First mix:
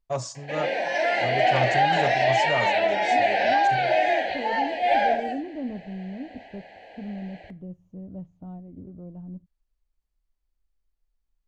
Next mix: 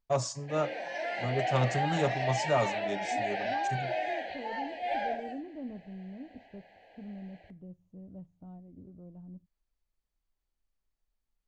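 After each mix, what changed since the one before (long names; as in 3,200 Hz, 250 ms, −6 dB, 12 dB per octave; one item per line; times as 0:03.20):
second voice −8.5 dB
background −11.5 dB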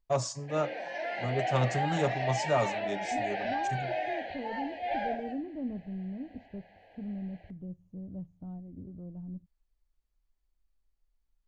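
second voice: add low-shelf EQ 290 Hz +8.5 dB
background: add high-frequency loss of the air 90 metres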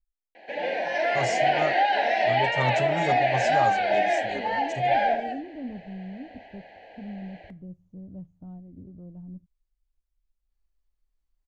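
first voice: entry +1.05 s
background +10.5 dB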